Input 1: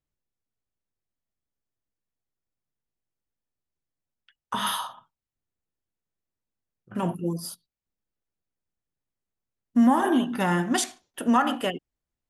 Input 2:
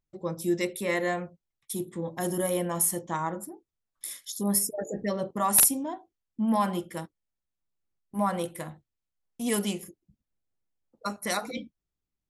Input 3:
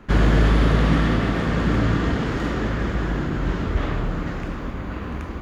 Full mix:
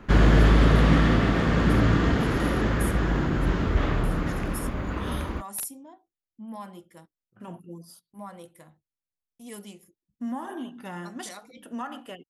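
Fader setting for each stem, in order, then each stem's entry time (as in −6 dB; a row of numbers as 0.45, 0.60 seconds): −13.5, −14.0, −0.5 decibels; 0.45, 0.00, 0.00 seconds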